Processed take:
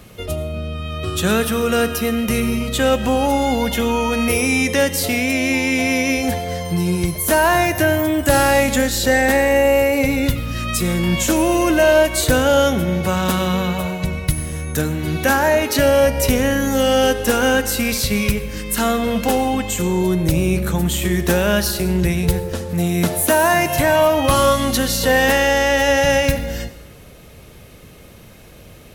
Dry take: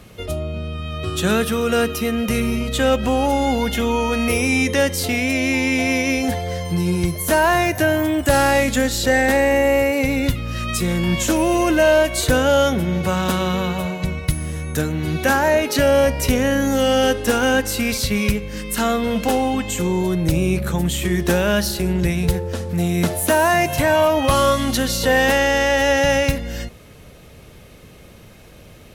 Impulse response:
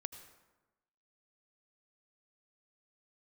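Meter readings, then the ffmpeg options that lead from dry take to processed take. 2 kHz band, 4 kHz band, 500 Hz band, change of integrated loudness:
+1.0 dB, +1.5 dB, +1.5 dB, +1.5 dB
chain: -filter_complex "[0:a]asplit=2[a][b];[1:a]atrim=start_sample=2205,highshelf=f=11k:g=10[c];[b][c]afir=irnorm=-1:irlink=0,volume=7.5dB[d];[a][d]amix=inputs=2:normalize=0,volume=-7.5dB"

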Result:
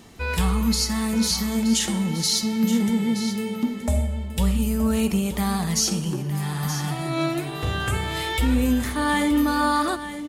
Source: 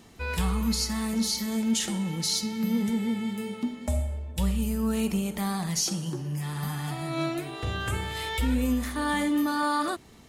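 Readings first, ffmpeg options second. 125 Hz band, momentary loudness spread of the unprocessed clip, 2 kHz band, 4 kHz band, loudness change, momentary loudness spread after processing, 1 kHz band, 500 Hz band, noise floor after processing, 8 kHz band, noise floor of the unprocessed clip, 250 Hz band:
+5.5 dB, 7 LU, +5.5 dB, +5.5 dB, +5.5 dB, 6 LU, +5.0 dB, +5.5 dB, -32 dBFS, +5.5 dB, -44 dBFS, +5.5 dB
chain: -af "aecho=1:1:924:0.266,volume=5dB"

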